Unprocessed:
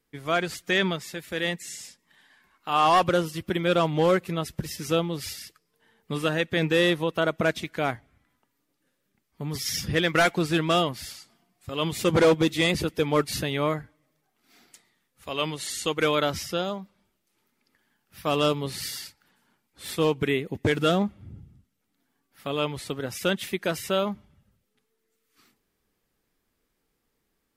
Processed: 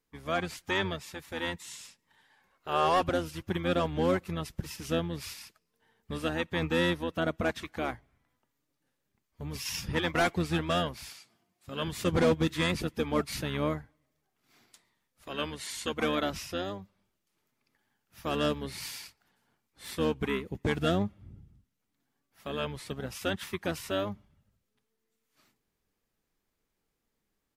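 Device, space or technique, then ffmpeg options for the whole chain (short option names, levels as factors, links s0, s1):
octave pedal: -filter_complex "[0:a]asplit=2[s0][s1];[s1]asetrate=22050,aresample=44100,atempo=2,volume=0.562[s2];[s0][s2]amix=inputs=2:normalize=0,asettb=1/sr,asplit=3[s3][s4][s5];[s3]atrim=end=11.114[s6];[s4]atrim=start=11.11:end=11.88,asetpts=PTS-STARTPTS,afade=t=in:d=0.004:c=qsin,afade=t=out:st=0.766:d=0.004:c=qsin,highpass=110[s7];[s5]atrim=start=11.876[s8];[s6][s7]acrossfade=d=0.004:c1=hsin:c2=qsin[s9];[s9][s8]acrossfade=d=0.004:c1=qsin:c2=hsin,volume=0.447"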